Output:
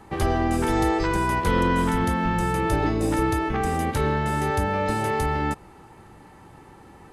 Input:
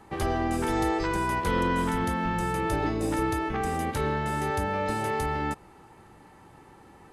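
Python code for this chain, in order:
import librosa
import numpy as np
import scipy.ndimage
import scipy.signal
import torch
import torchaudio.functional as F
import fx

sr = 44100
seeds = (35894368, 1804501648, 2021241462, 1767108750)

y = fx.low_shelf(x, sr, hz=180.0, db=3.5)
y = y * librosa.db_to_amplitude(3.5)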